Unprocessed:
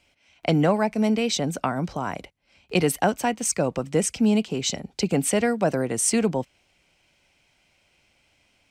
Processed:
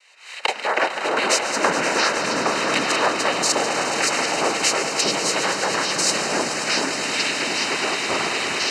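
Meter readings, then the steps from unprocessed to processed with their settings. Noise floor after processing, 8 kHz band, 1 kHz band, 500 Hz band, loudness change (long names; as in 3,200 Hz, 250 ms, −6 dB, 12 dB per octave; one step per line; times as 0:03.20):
−34 dBFS, +5.5 dB, +8.0 dB, +1.5 dB, +3.5 dB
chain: camcorder AGC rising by 45 dB per second
high-pass filter 810 Hz 24 dB per octave
in parallel at −0.5 dB: downward compressor, threshold −36 dBFS, peak gain reduction 17.5 dB
on the sum: cochlear-implant simulation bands 6
on a send: echo with a time of its own for lows and highs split 1,400 Hz, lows 652 ms, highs 143 ms, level −13 dB
on the sum: delay with pitch and tempo change per echo 134 ms, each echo −6 semitones, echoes 3
Butterworth band-reject 3,400 Hz, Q 5.4
echo that builds up and dies away 105 ms, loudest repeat 5, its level −12 dB
level +3.5 dB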